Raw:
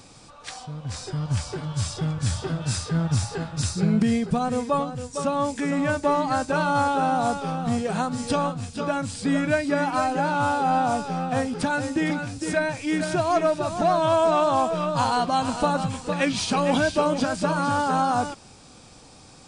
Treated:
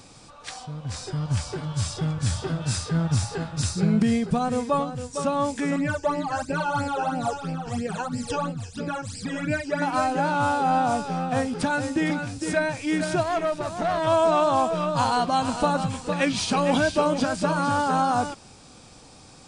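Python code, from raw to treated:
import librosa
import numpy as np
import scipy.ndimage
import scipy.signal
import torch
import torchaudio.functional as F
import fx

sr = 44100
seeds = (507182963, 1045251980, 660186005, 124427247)

y = fx.phaser_stages(x, sr, stages=12, low_hz=200.0, high_hz=1200.0, hz=3.0, feedback_pct=25, at=(5.76, 9.82))
y = fx.tube_stage(y, sr, drive_db=19.0, bias=0.6, at=(13.23, 14.07))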